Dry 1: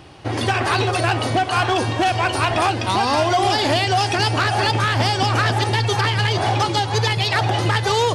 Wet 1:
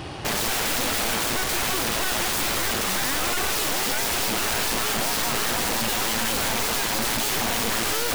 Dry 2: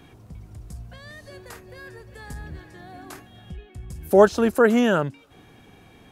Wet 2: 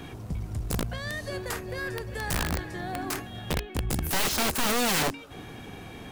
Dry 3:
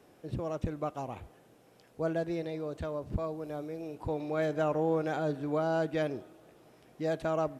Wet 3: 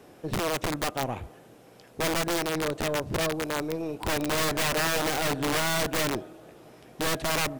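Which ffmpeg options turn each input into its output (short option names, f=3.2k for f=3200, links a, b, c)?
-af "aeval=exprs='0.75*sin(PI/2*2.82*val(0)/0.75)':c=same,aeval=exprs='(tanh(3.98*val(0)+0.75)-tanh(0.75))/3.98':c=same,aeval=exprs='(mod(11.9*val(0)+1,2)-1)/11.9':c=same"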